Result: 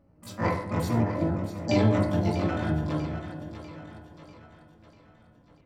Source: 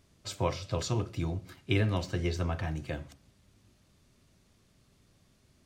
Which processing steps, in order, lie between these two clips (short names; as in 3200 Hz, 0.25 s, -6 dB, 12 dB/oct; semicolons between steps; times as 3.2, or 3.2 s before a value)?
Wiener smoothing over 25 samples; on a send: split-band echo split 430 Hz, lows 0.421 s, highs 0.644 s, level -10 dB; on the sum: FDN reverb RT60 0.74 s, low-frequency decay 1.5×, high-frequency decay 0.35×, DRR -2.5 dB; harmoniser +12 st -1 dB; high shelf 5900 Hz -7.5 dB; gain -3.5 dB